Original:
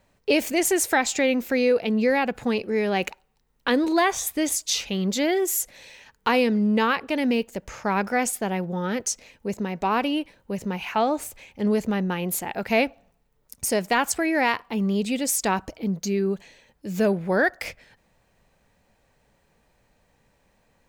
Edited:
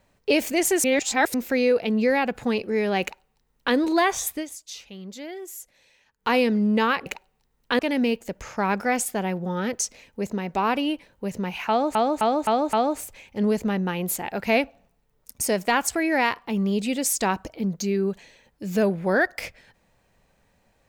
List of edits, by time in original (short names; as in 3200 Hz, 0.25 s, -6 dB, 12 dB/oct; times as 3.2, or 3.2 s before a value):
0.84–1.34 reverse
3.02–3.75 copy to 7.06
4.31–6.32 dip -14 dB, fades 0.15 s
10.96–11.22 loop, 5 plays